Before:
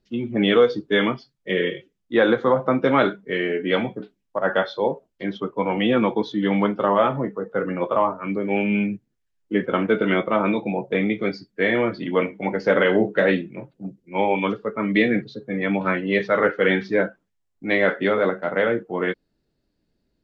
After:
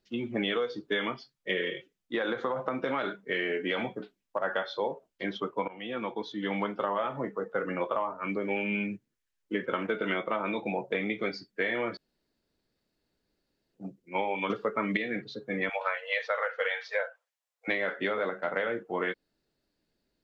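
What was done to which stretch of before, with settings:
1.63–4.44 compressor, threshold -18 dBFS
5.68–7.06 fade in, from -21 dB
8.49–9.85 notch 730 Hz, Q 6.7
11.97–13.74 room tone
14.5–14.97 gain +9 dB
15.69–17.68 brick-wall FIR high-pass 450 Hz
whole clip: low shelf 380 Hz -10.5 dB; compressor 10:1, threshold -26 dBFS

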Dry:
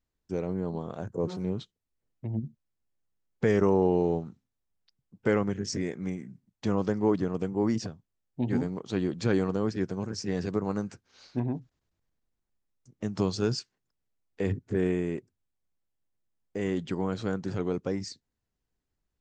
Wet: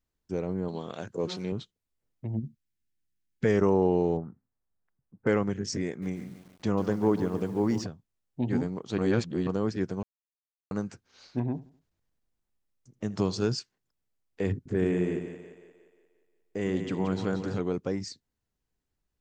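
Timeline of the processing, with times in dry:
0.68–1.52 weighting filter D
2.45–3.45 band shelf 730 Hz -14.5 dB
4.17–5.27 steep low-pass 1800 Hz
5.88–7.84 lo-fi delay 0.142 s, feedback 55%, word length 8-bit, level -12 dB
8.98–9.47 reverse
10.03–10.71 mute
11.5–13.47 feedback echo 79 ms, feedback 41%, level -19.5 dB
14.56–17.6 split-band echo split 410 Hz, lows 94 ms, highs 0.177 s, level -7.5 dB

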